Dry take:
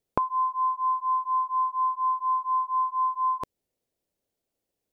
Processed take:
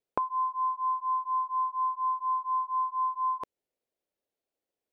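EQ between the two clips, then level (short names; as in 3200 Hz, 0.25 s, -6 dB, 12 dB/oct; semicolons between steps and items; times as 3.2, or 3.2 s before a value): tone controls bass -10 dB, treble -7 dB; -3.5 dB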